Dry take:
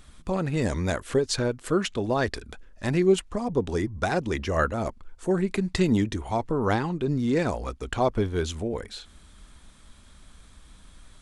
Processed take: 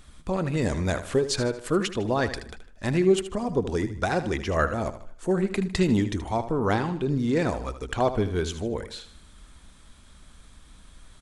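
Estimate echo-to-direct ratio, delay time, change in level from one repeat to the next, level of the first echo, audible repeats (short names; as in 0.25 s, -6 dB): -11.5 dB, 77 ms, -8.0 dB, -12.0 dB, 3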